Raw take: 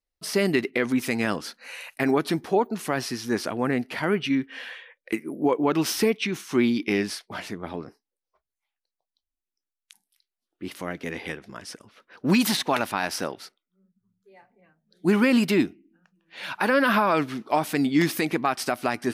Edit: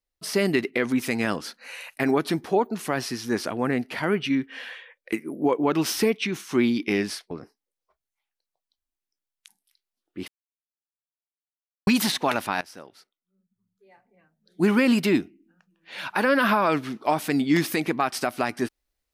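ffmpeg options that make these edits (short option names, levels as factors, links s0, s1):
-filter_complex "[0:a]asplit=5[s0][s1][s2][s3][s4];[s0]atrim=end=7.312[s5];[s1]atrim=start=7.758:end=10.73,asetpts=PTS-STARTPTS,afade=t=out:st=2.968:d=0.004:c=hsin[s6];[s2]atrim=start=10.73:end=12.32,asetpts=PTS-STARTPTS,volume=0[s7];[s3]atrim=start=12.32:end=13.06,asetpts=PTS-STARTPTS,afade=t=in:d=0.004:c=hsin,afade=t=out:st=0.736:d=0.004:c=hsin:silence=0.125893[s8];[s4]atrim=start=13.06,asetpts=PTS-STARTPTS,afade=t=in:d=2.01:silence=0.125893[s9];[s6][s7][s8][s9]concat=n=4:v=0:a=1[s10];[s5][s10]acrossfade=d=0.004:c1=hsin:c2=hsin"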